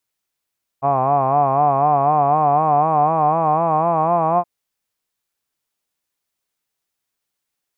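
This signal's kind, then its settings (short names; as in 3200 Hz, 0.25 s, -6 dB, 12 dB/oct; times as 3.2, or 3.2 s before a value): formant-synthesis vowel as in hod, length 3.62 s, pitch 134 Hz, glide +4 st, vibrato 4 Hz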